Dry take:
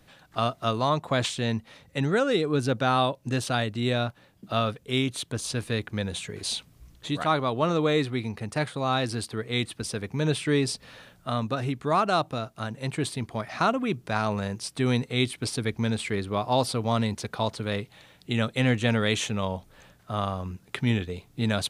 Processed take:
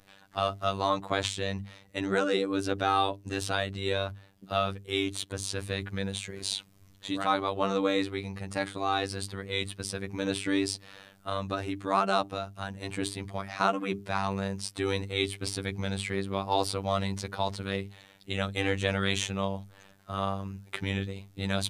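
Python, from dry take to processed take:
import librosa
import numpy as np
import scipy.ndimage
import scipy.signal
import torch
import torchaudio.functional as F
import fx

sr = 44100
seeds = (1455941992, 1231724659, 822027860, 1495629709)

y = fx.robotise(x, sr, hz=97.5)
y = fx.hum_notches(y, sr, base_hz=50, count=8)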